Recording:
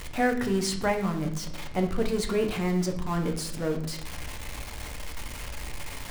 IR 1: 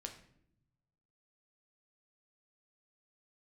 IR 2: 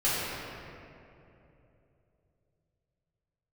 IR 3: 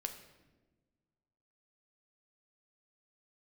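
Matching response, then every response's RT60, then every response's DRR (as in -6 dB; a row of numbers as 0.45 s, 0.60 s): 1; 0.70 s, 2.9 s, 1.3 s; 3.5 dB, -12.0 dB, 5.5 dB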